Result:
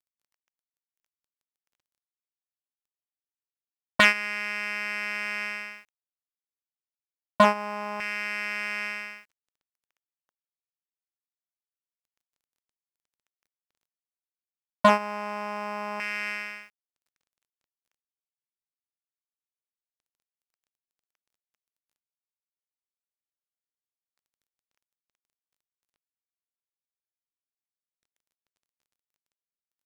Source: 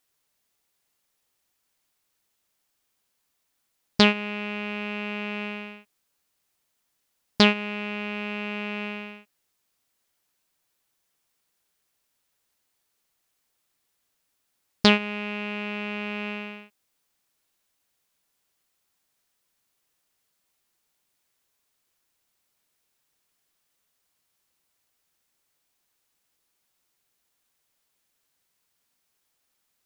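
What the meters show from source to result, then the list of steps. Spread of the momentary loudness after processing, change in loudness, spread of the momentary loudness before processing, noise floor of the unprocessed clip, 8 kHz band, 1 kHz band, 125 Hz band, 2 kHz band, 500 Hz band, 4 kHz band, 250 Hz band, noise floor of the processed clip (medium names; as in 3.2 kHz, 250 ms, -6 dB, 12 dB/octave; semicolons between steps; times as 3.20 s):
14 LU, -0.5 dB, 17 LU, -76 dBFS, no reading, +6.0 dB, -7.5 dB, +2.5 dB, +0.5 dB, -7.0 dB, -7.5 dB, under -85 dBFS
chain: square wave that keeps the level; LFO band-pass square 0.25 Hz 910–1900 Hz; word length cut 12-bit, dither none; trim +7 dB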